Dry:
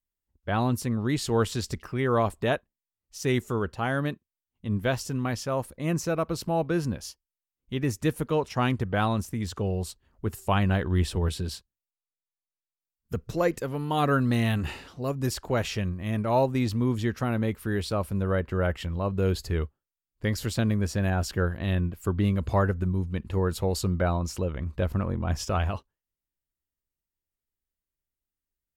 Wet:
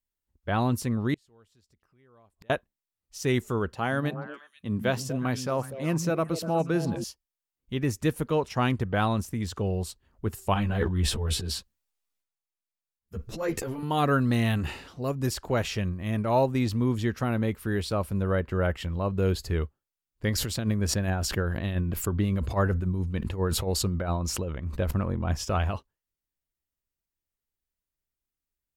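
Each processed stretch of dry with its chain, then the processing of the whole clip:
0:01.14–0:02.50: upward compression, threshold −26 dBFS + gate with flip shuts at −29 dBFS, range −35 dB
0:03.73–0:07.04: high-pass filter 110 Hz + echo through a band-pass that steps 121 ms, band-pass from 170 Hz, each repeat 1.4 octaves, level −5 dB
0:10.54–0:13.83: transient designer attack −8 dB, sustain +11 dB + string-ensemble chorus
0:20.28–0:24.91: amplitude tremolo 7.3 Hz, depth 81% + level that may fall only so fast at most 33 dB per second
whole clip: no processing

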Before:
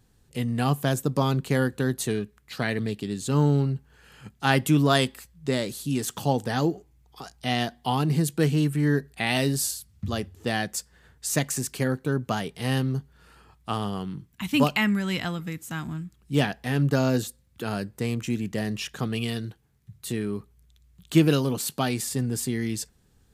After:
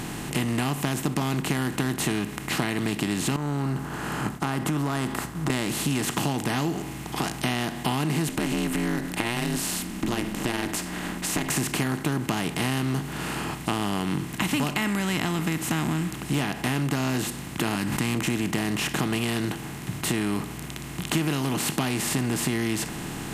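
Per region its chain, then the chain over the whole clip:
0:03.36–0:05.50: downward expander −55 dBFS + high shelf with overshoot 1,800 Hz −10.5 dB, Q 3 + downward compressor 3 to 1, threshold −36 dBFS
0:08.28–0:11.50: downward compressor 3 to 1, threshold −31 dBFS + ring modulation 120 Hz
0:17.75–0:18.15: flat-topped bell 500 Hz −15.5 dB 1.2 octaves + level that may fall only so fast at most 59 dB per second
whole clip: compressor on every frequency bin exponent 0.4; parametric band 520 Hz −12.5 dB 0.3 octaves; downward compressor, threshold −22 dBFS

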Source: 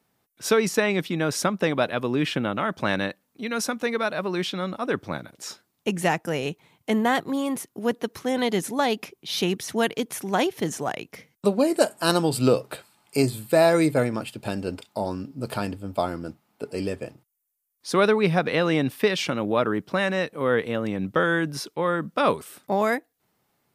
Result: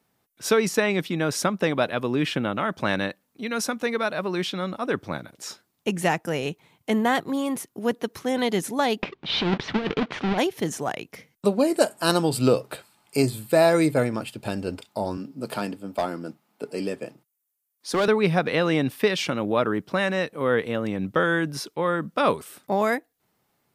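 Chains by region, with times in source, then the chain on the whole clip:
0:09.02–0:10.38: each half-wave held at its own peak + low-pass filter 3,800 Hz 24 dB per octave + compressor whose output falls as the input rises −21 dBFS, ratio −0.5
0:15.17–0:18.08: high-pass filter 150 Hz 24 dB per octave + gain into a clipping stage and back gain 17 dB
whole clip: no processing

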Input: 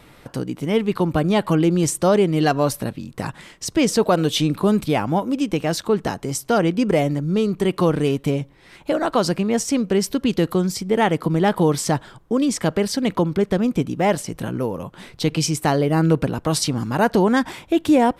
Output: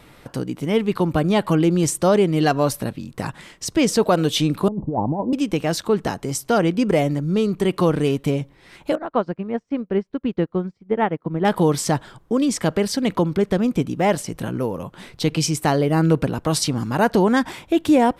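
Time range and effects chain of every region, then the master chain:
0:04.68–0:05.33: Butterworth low-pass 990 Hz 72 dB per octave + compressor whose output falls as the input rises −21 dBFS, ratio −0.5
0:08.95–0:11.45: low-pass filter 1,900 Hz + expander for the loud parts 2.5 to 1, over −34 dBFS
whole clip: no processing

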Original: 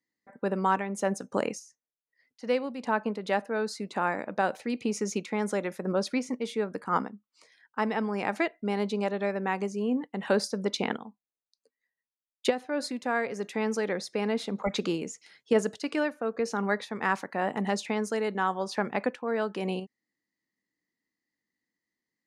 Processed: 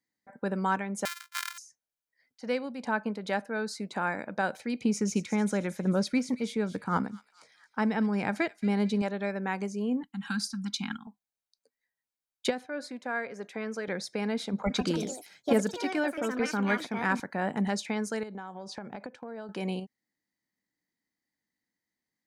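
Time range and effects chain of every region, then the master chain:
0:01.05–0:01.58: samples sorted by size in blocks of 128 samples + Butterworth high-pass 1,100 Hz 48 dB per octave
0:04.83–0:09.02: low-shelf EQ 180 Hz +11.5 dB + delay with a high-pass on its return 223 ms, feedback 48%, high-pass 3,100 Hz, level −11 dB
0:10.03–0:11.07: Chebyshev band-stop filter 190–1,400 Hz + parametric band 2,000 Hz −11 dB 0.41 octaves + comb filter 3.7 ms, depth 49%
0:12.66–0:13.88: high-pass filter 380 Hz 6 dB per octave + high-shelf EQ 3,300 Hz −10.5 dB + notch filter 860 Hz, Q 11
0:14.53–0:17.68: low-shelf EQ 340 Hz +4 dB + delay with pitch and tempo change per echo 168 ms, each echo +4 semitones, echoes 2, each echo −6 dB
0:18.23–0:19.49: low-pass filter 7,000 Hz + parametric band 2,000 Hz −7 dB 2.1 octaves + downward compressor, threshold −35 dBFS
whole clip: parametric band 2,800 Hz −4.5 dB 0.28 octaves; comb filter 1.3 ms, depth 31%; dynamic equaliser 740 Hz, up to −6 dB, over −41 dBFS, Q 1.4

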